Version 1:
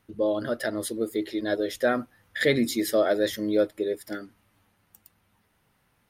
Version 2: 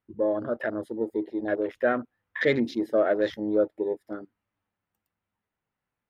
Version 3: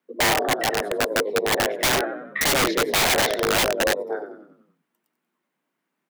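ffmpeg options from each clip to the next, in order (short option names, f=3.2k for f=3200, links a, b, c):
-af "afwtdn=0.0158,bass=f=250:g=-3,treble=f=4k:g=-13"
-filter_complex "[0:a]asplit=7[a][b][c][d][e][f][g];[b]adelay=93,afreqshift=-45,volume=-9dB[h];[c]adelay=186,afreqshift=-90,volume=-14.8dB[i];[d]adelay=279,afreqshift=-135,volume=-20.7dB[j];[e]adelay=372,afreqshift=-180,volume=-26.5dB[k];[f]adelay=465,afreqshift=-225,volume=-32.4dB[l];[g]adelay=558,afreqshift=-270,volume=-38.2dB[m];[a][h][i][j][k][l][m]amix=inputs=7:normalize=0,afreqshift=140,aeval=exprs='(mod(11.2*val(0)+1,2)-1)/11.2':c=same,volume=6.5dB"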